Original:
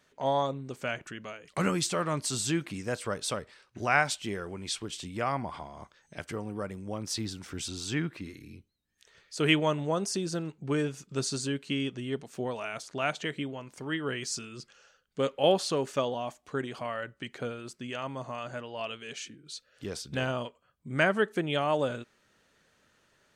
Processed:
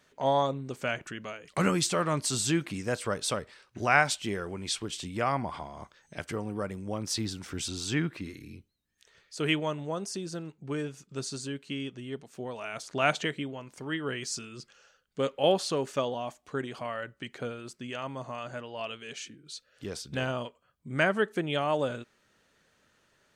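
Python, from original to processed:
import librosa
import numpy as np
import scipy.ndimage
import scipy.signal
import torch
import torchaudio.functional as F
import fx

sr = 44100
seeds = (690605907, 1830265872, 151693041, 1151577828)

y = fx.gain(x, sr, db=fx.line((8.5, 2.0), (9.71, -4.5), (12.47, -4.5), (13.15, 6.0), (13.38, -0.5)))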